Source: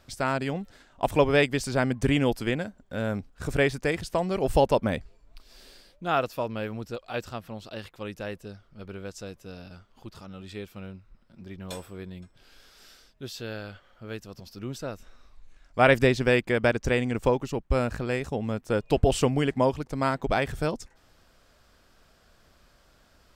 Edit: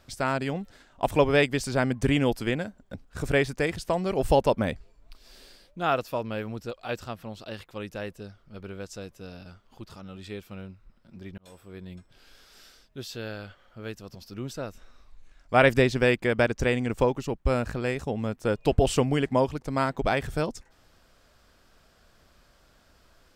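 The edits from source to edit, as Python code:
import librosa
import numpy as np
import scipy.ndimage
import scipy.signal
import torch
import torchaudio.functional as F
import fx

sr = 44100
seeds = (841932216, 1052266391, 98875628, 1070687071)

y = fx.edit(x, sr, fx.cut(start_s=2.94, length_s=0.25),
    fx.fade_in_span(start_s=11.63, length_s=0.54), tone=tone)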